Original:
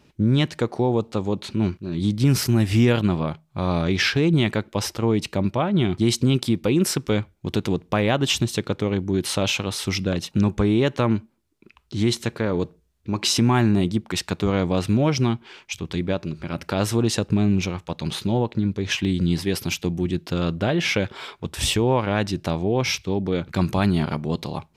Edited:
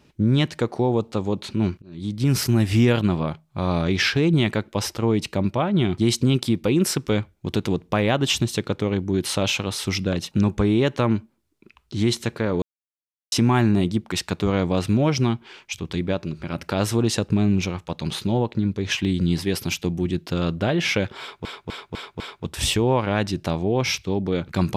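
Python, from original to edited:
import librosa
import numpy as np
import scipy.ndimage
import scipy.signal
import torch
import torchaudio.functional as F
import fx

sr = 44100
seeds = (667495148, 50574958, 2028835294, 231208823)

y = fx.edit(x, sr, fx.fade_in_from(start_s=1.82, length_s=0.59, floor_db=-21.0),
    fx.silence(start_s=12.62, length_s=0.7),
    fx.repeat(start_s=21.2, length_s=0.25, count=5), tone=tone)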